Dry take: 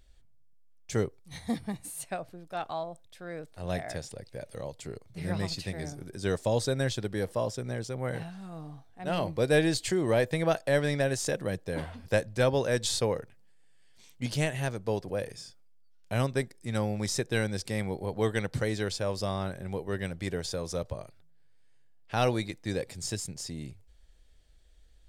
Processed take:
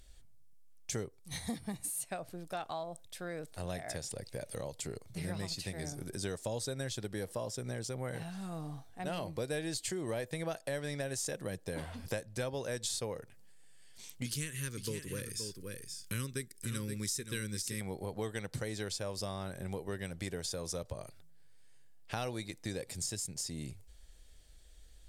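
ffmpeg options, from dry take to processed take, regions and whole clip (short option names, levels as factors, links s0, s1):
-filter_complex "[0:a]asettb=1/sr,asplit=3[s0][s1][s2];[s0]atrim=end=14.254[s3];[s1]atrim=start=14.25:end=17.81,asetpts=PTS-STARTPTS,afade=t=in:d=0.004:c=qsin,afade=t=out:st=3.556:d=0.004:c=qsin,asuperstop=centerf=720:order=4:qfactor=0.94,highshelf=f=8900:g=9.5,aecho=1:1:523:0.316,atrim=end_sample=156996[s4];[s2]atrim=start=17.806[s5];[s3][s4]acrossfade=d=0.004:c1=hsin:c2=qsin[s6];[s6][s5]acrossfade=d=0.004:c1=qsin:c2=hsin,equalizer=f=11000:t=o:w=1.8:g=9,acompressor=threshold=0.0112:ratio=4,volume=1.26"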